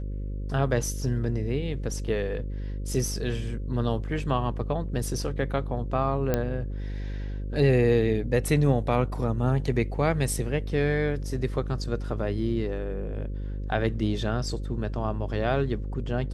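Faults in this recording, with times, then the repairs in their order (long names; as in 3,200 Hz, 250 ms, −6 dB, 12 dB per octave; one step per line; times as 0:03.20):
mains buzz 50 Hz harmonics 11 −32 dBFS
0:06.34: click −11 dBFS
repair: click removal
hum removal 50 Hz, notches 11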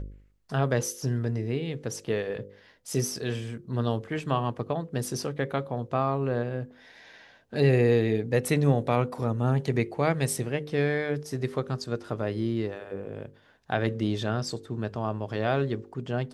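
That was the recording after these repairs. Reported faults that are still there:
none of them is left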